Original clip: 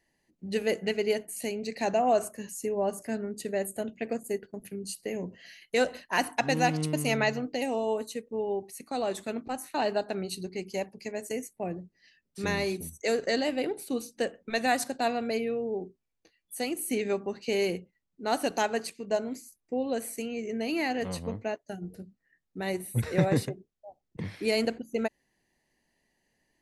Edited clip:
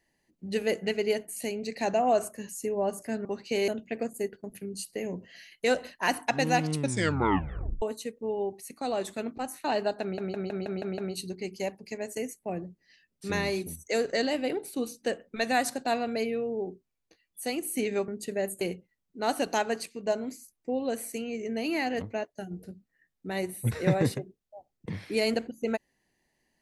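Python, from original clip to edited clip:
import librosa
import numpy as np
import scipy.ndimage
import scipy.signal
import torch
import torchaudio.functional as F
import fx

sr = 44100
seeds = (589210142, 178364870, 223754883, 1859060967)

y = fx.edit(x, sr, fx.swap(start_s=3.25, length_s=0.53, other_s=17.22, other_length_s=0.43),
    fx.tape_stop(start_s=6.85, length_s=1.07),
    fx.stutter(start_s=10.12, slice_s=0.16, count=7),
    fx.cut(start_s=21.06, length_s=0.27), tone=tone)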